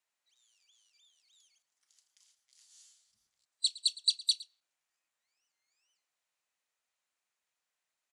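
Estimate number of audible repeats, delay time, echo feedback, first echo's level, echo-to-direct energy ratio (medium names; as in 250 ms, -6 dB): 1, 112 ms, no regular repeats, -19.5 dB, -19.5 dB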